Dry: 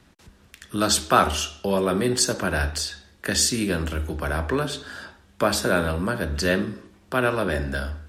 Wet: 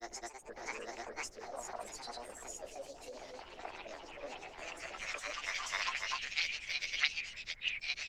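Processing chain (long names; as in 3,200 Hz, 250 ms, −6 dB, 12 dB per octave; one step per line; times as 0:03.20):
pitch shifter swept by a sawtooth +4.5 semitones, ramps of 619 ms
band-pass filter sweep 390 Hz → 2,200 Hz, 0:04.86–0:06.32
echo with shifted repeats 102 ms, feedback 54%, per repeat −73 Hz, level −15 dB
envelope filter 620–4,500 Hz, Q 3.2, up, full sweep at −32 dBFS
background noise brown −74 dBFS
granular cloud, spray 823 ms, pitch spread up and down by 0 semitones
formants moved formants +5 semitones
delay with pitch and tempo change per echo 138 ms, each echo +2 semitones, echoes 2, each echo −6 dB
level +14 dB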